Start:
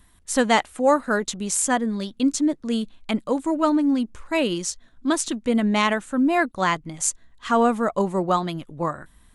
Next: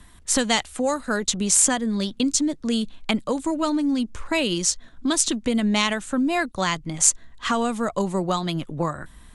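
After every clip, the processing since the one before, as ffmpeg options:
-filter_complex "[0:a]lowpass=10k,acrossover=split=130|3000[a][b][c];[b]acompressor=threshold=-31dB:ratio=4[d];[a][d][c]amix=inputs=3:normalize=0,volume=7.5dB"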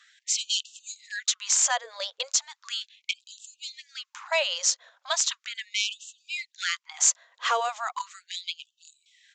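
-af "aresample=16000,asoftclip=type=hard:threshold=-13.5dB,aresample=44100,afftfilt=real='re*gte(b*sr/1024,440*pow(2600/440,0.5+0.5*sin(2*PI*0.37*pts/sr)))':imag='im*gte(b*sr/1024,440*pow(2600/440,0.5+0.5*sin(2*PI*0.37*pts/sr)))':win_size=1024:overlap=0.75"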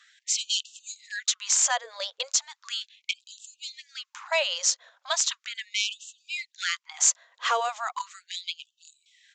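-af anull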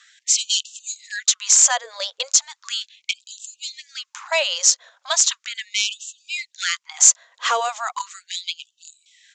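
-af "acontrast=67,lowpass=f=7.8k:t=q:w=1.8,volume=-2dB"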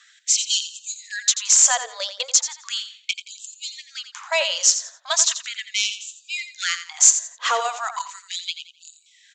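-af "aecho=1:1:86|172|258:0.282|0.0733|0.0191,volume=-1dB"

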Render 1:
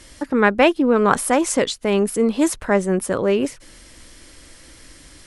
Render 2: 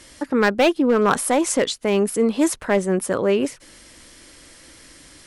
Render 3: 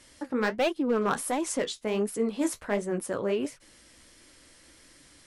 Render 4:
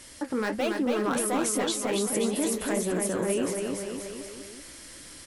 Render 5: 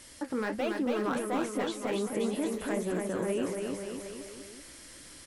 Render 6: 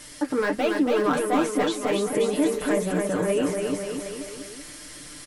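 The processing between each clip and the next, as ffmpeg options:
-af "lowshelf=f=74:g=-11,asoftclip=type=hard:threshold=-10dB"
-af "flanger=delay=6.7:depth=9.6:regen=-44:speed=1.4:shape=triangular,volume=-5.5dB"
-filter_complex "[0:a]highshelf=f=8.7k:g=8.5,alimiter=level_in=3dB:limit=-24dB:level=0:latency=1:release=54,volume=-3dB,asplit=2[a][b];[b]aecho=0:1:280|532|758.8|962.9|1147:0.631|0.398|0.251|0.158|0.1[c];[a][c]amix=inputs=2:normalize=0,volume=6dB"
-filter_complex "[0:a]acrossover=split=2900[a][b];[b]acompressor=threshold=-41dB:ratio=4:attack=1:release=60[c];[a][c]amix=inputs=2:normalize=0,volume=-3.5dB"
-af "aecho=1:1:6.7:0.68,volume=6.5dB"

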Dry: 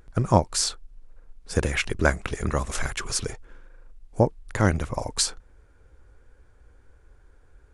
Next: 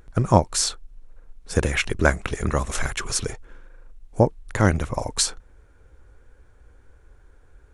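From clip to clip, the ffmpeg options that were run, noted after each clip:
-af "bandreject=f=4.8k:w=16,volume=2.5dB"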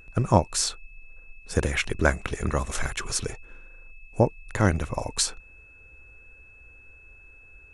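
-af "aeval=exprs='val(0)+0.00447*sin(2*PI*2600*n/s)':c=same,volume=-3dB"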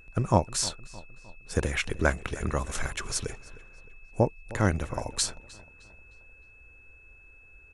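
-filter_complex "[0:a]asplit=2[a][b];[b]adelay=308,lowpass=f=4.4k:p=1,volume=-19dB,asplit=2[c][d];[d]adelay=308,lowpass=f=4.4k:p=1,volume=0.49,asplit=2[e][f];[f]adelay=308,lowpass=f=4.4k:p=1,volume=0.49,asplit=2[g][h];[h]adelay=308,lowpass=f=4.4k:p=1,volume=0.49[i];[a][c][e][g][i]amix=inputs=5:normalize=0,volume=-3dB"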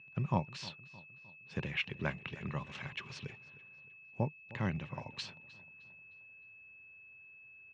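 -af "highpass=f=110:w=0.5412,highpass=f=110:w=1.3066,equalizer=f=150:t=q:w=4:g=7,equalizer=f=310:t=q:w=4:g=-8,equalizer=f=470:t=q:w=4:g=-8,equalizer=f=680:t=q:w=4:g=-7,equalizer=f=1.4k:t=q:w=4:g=-9,equalizer=f=2.7k:t=q:w=4:g=8,lowpass=f=4k:w=0.5412,lowpass=f=4k:w=1.3066,volume=-7.5dB"

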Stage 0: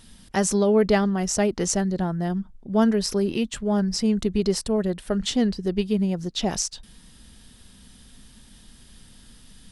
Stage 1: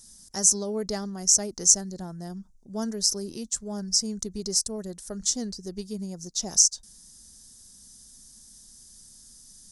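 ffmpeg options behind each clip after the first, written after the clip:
-af "highshelf=f=4.2k:t=q:w=3:g=14,volume=-11.5dB"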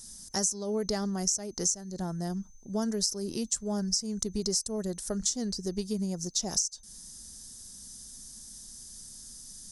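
-af "acompressor=threshold=-30dB:ratio=12,aeval=exprs='val(0)+0.000631*sin(2*PI*6200*n/s)':c=same,volume=4dB"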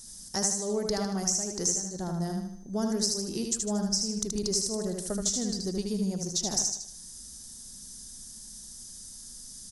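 -af "aecho=1:1:77|154|231|308|385|462:0.631|0.284|0.128|0.0575|0.0259|0.0116,aeval=exprs='0.282*(cos(1*acos(clip(val(0)/0.282,-1,1)))-cos(1*PI/2))+0.002*(cos(6*acos(clip(val(0)/0.282,-1,1)))-cos(6*PI/2))':c=same"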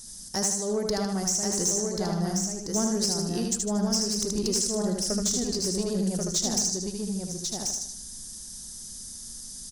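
-af "asoftclip=type=tanh:threshold=-21dB,aecho=1:1:1086:0.631,volume=3dB"

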